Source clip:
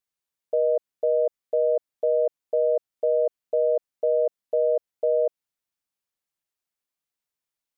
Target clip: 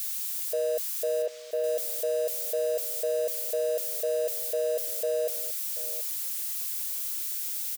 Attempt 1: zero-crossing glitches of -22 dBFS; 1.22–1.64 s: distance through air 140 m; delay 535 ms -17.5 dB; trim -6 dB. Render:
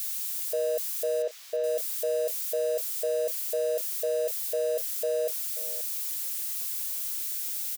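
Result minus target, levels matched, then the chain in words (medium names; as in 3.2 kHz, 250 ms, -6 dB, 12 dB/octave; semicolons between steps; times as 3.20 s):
echo 198 ms early
zero-crossing glitches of -22 dBFS; 1.22–1.64 s: distance through air 140 m; delay 733 ms -17.5 dB; trim -6 dB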